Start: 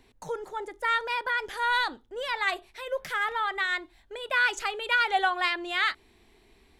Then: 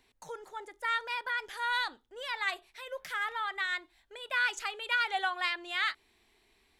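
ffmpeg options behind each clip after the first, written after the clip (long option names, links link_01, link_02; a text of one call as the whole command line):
ffmpeg -i in.wav -af "tiltshelf=frequency=670:gain=-5,volume=-8.5dB" out.wav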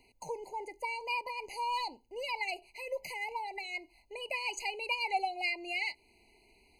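ffmpeg -i in.wav -filter_complex "[0:a]asplit=2[link_01][link_02];[link_02]acompressor=threshold=-39dB:ratio=6,volume=-2dB[link_03];[link_01][link_03]amix=inputs=2:normalize=0,afftfilt=real='re*eq(mod(floor(b*sr/1024/1000),2),0)':imag='im*eq(mod(floor(b*sr/1024/1000),2),0)':win_size=1024:overlap=0.75" out.wav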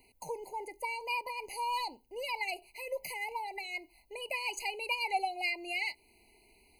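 ffmpeg -i in.wav -af "aexciter=amount=4:drive=2.9:freq=9500" out.wav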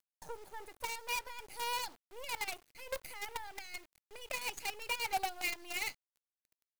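ffmpeg -i in.wav -af "acrusher=bits=6:dc=4:mix=0:aa=0.000001,volume=-3.5dB" out.wav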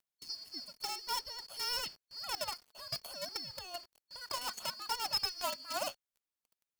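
ffmpeg -i in.wav -af "afftfilt=real='real(if(lt(b,272),68*(eq(floor(b/68),0)*1+eq(floor(b/68),1)*2+eq(floor(b/68),2)*3+eq(floor(b/68),3)*0)+mod(b,68),b),0)':imag='imag(if(lt(b,272),68*(eq(floor(b/68),0)*1+eq(floor(b/68),1)*2+eq(floor(b/68),2)*3+eq(floor(b/68),3)*0)+mod(b,68),b),0)':win_size=2048:overlap=0.75,aphaser=in_gain=1:out_gain=1:delay=4.9:decay=0.24:speed=0.52:type=sinusoidal" out.wav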